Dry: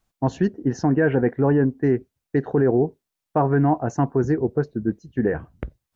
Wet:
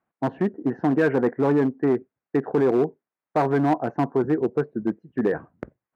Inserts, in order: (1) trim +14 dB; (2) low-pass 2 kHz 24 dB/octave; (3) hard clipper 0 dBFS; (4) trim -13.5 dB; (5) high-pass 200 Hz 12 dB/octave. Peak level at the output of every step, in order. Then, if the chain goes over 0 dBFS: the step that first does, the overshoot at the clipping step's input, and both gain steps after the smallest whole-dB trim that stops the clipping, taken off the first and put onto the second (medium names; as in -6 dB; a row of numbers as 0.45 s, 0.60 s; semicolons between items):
+7.0 dBFS, +7.0 dBFS, 0.0 dBFS, -13.5 dBFS, -9.0 dBFS; step 1, 7.0 dB; step 1 +7 dB, step 4 -6.5 dB